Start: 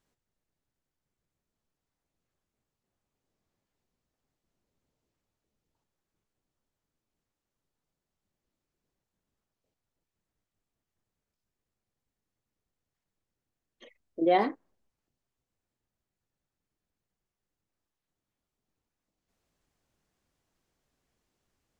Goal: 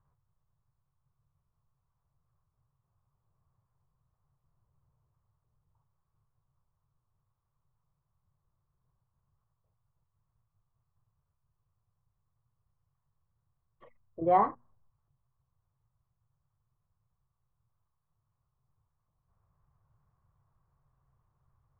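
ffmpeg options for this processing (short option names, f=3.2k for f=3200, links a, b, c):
-af "lowpass=f=1.1k:t=q:w=4.8,lowshelf=f=180:t=q:w=3:g=12.5,bandreject=f=60:t=h:w=6,bandreject=f=120:t=h:w=6,bandreject=f=180:t=h:w=6,bandreject=f=240:t=h:w=6,volume=-3dB"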